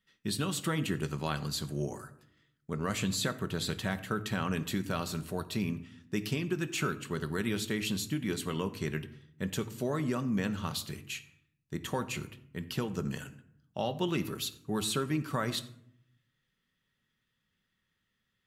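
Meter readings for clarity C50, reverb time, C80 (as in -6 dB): 15.0 dB, 0.70 s, 17.5 dB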